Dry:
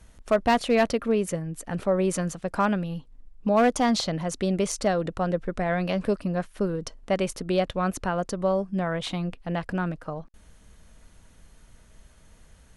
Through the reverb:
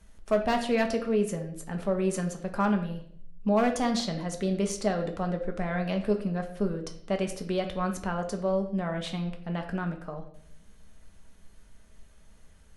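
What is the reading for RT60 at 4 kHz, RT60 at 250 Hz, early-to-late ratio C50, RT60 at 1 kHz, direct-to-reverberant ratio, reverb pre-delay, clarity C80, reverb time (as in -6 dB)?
0.55 s, 0.75 s, 9.5 dB, 0.55 s, 4.0 dB, 4 ms, 12.5 dB, 0.65 s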